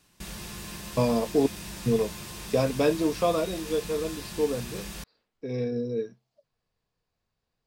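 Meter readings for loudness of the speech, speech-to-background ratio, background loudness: -28.0 LUFS, 10.5 dB, -38.5 LUFS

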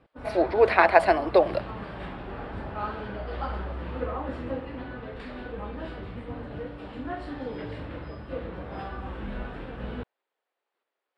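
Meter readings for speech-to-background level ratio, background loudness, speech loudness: 14.5 dB, -36.5 LUFS, -22.0 LUFS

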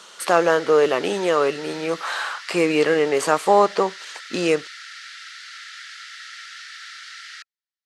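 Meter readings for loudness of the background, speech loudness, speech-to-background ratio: -37.0 LUFS, -20.5 LUFS, 16.5 dB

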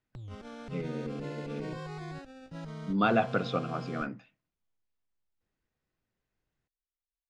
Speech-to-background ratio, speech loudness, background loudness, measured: 10.0 dB, -32.5 LUFS, -42.5 LUFS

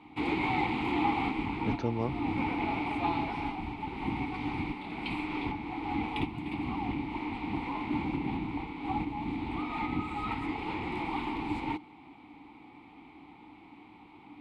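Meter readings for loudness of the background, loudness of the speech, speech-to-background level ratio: -33.5 LUFS, -36.0 LUFS, -2.5 dB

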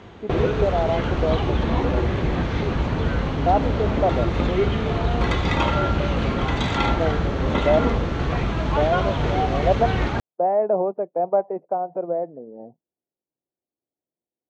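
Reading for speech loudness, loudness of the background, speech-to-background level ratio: -25.0 LUFS, -23.0 LUFS, -2.0 dB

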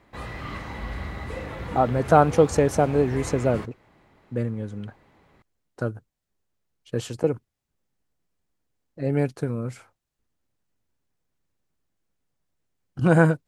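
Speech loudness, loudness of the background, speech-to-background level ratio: -23.5 LUFS, -35.0 LUFS, 11.5 dB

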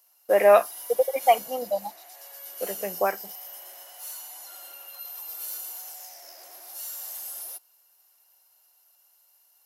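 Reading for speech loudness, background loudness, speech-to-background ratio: -23.5 LUFS, -37.0 LUFS, 13.5 dB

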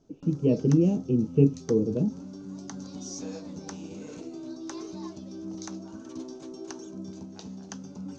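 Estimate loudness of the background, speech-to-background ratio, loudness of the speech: -40.5 LUFS, 15.5 dB, -25.0 LUFS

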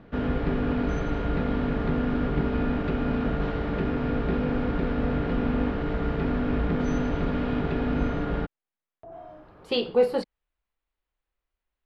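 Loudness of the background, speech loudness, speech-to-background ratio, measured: -27.5 LUFS, -25.5 LUFS, 2.0 dB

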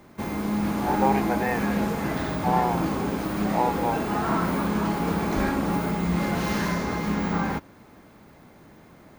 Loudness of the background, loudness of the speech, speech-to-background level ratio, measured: -26.5 LUFS, -28.5 LUFS, -2.0 dB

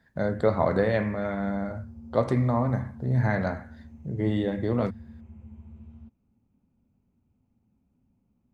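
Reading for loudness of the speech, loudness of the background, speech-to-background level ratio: -27.0 LUFS, -46.5 LUFS, 19.5 dB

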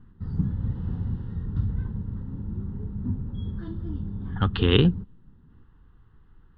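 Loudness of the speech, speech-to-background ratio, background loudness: -23.0 LUFS, 9.0 dB, -32.0 LUFS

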